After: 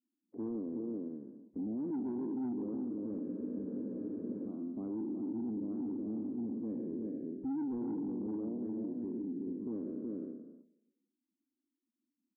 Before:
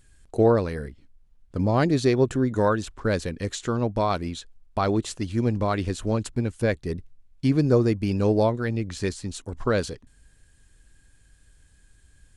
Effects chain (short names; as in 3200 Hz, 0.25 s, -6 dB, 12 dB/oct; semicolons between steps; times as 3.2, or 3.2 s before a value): spectral trails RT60 1.23 s; Butterworth band-pass 270 Hz, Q 2.6; gate -51 dBFS, range -15 dB; echo 0.371 s -6 dB; Schroeder reverb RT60 1.2 s, combs from 29 ms, DRR 18 dB; soft clip -20 dBFS, distortion -17 dB; limiter -32.5 dBFS, peak gain reduction 12 dB; spectral freeze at 3.25, 1.23 s; Vorbis 16 kbps 22050 Hz